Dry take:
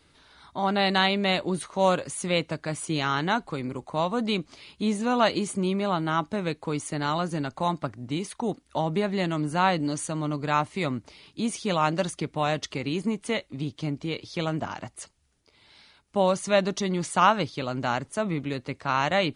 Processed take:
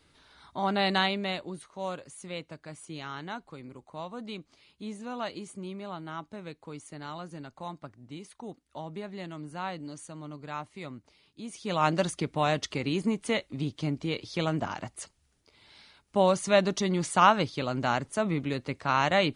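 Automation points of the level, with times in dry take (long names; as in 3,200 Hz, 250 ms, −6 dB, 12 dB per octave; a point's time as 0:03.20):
0:00.97 −3 dB
0:01.62 −13 dB
0:11.46 −13 dB
0:11.86 −0.5 dB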